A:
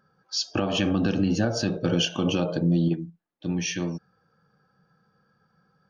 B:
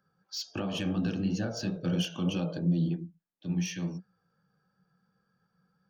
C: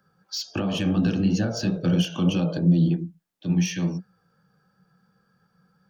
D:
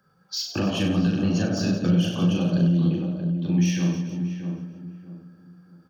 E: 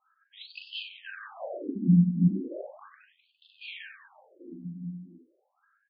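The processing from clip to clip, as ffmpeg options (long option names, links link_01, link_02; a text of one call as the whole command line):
ffmpeg -i in.wav -filter_complex "[0:a]equalizer=frequency=180:width_type=o:width=0.24:gain=8,acrossover=split=120|1600[link_01][link_02][link_03];[link_02]flanger=delay=15:depth=7.9:speed=2.9[link_04];[link_03]asoftclip=type=tanh:threshold=-22.5dB[link_05];[link_01][link_04][link_05]amix=inputs=3:normalize=0,volume=-7dB" out.wav
ffmpeg -i in.wav -filter_complex "[0:a]acrossover=split=290[link_01][link_02];[link_02]acompressor=threshold=-36dB:ratio=6[link_03];[link_01][link_03]amix=inputs=2:normalize=0,volume=8.5dB" out.wav
ffmpeg -i in.wav -filter_complex "[0:a]asplit=2[link_01][link_02];[link_02]aecho=0:1:40|96|174.4|284.2|437.8:0.631|0.398|0.251|0.158|0.1[link_03];[link_01][link_03]amix=inputs=2:normalize=0,alimiter=limit=-13.5dB:level=0:latency=1:release=292,asplit=2[link_04][link_05];[link_05]adelay=631,lowpass=frequency=1000:poles=1,volume=-6.5dB,asplit=2[link_06][link_07];[link_07]adelay=631,lowpass=frequency=1000:poles=1,volume=0.31,asplit=2[link_08][link_09];[link_09]adelay=631,lowpass=frequency=1000:poles=1,volume=0.31,asplit=2[link_10][link_11];[link_11]adelay=631,lowpass=frequency=1000:poles=1,volume=0.31[link_12];[link_06][link_08][link_10][link_12]amix=inputs=4:normalize=0[link_13];[link_04][link_13]amix=inputs=2:normalize=0" out.wav
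ffmpeg -i in.wav -af "highpass=120,equalizer=frequency=170:width_type=q:width=4:gain=3,equalizer=frequency=300:width_type=q:width=4:gain=-5,equalizer=frequency=450:width_type=q:width=4:gain=-7,equalizer=frequency=1600:width_type=q:width=4:gain=6,equalizer=frequency=2800:width_type=q:width=4:gain=-5,lowpass=frequency=4900:width=0.5412,lowpass=frequency=4900:width=1.3066,adynamicsmooth=sensitivity=7:basefreq=1800,afftfilt=real='re*between(b*sr/1024,210*pow(3700/210,0.5+0.5*sin(2*PI*0.36*pts/sr))/1.41,210*pow(3700/210,0.5+0.5*sin(2*PI*0.36*pts/sr))*1.41)':imag='im*between(b*sr/1024,210*pow(3700/210,0.5+0.5*sin(2*PI*0.36*pts/sr))/1.41,210*pow(3700/210,0.5+0.5*sin(2*PI*0.36*pts/sr))*1.41)':win_size=1024:overlap=0.75" out.wav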